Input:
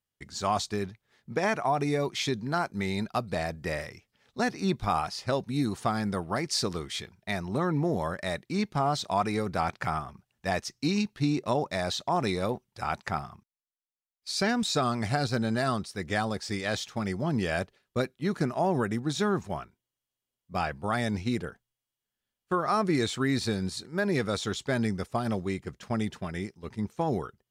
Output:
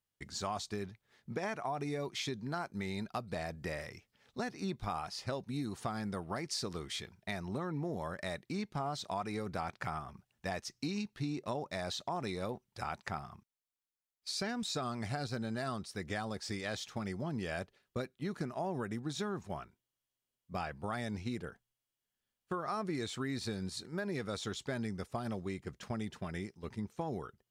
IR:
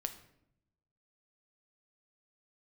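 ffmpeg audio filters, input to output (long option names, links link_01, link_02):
-af "acompressor=threshold=-36dB:ratio=2.5,volume=-2dB"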